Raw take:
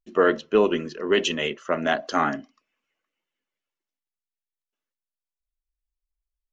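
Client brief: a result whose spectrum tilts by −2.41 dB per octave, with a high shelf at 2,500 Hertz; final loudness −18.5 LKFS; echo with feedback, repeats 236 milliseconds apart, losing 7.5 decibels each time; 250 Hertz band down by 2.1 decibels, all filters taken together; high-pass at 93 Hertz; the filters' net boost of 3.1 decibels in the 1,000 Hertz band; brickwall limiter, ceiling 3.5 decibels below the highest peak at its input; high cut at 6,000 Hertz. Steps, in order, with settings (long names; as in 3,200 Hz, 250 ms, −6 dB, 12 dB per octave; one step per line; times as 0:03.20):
high-pass filter 93 Hz
low-pass filter 6,000 Hz
parametric band 250 Hz −3 dB
parametric band 1,000 Hz +5.5 dB
high-shelf EQ 2,500 Hz −5.5 dB
brickwall limiter −10 dBFS
repeating echo 236 ms, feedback 42%, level −7.5 dB
level +6 dB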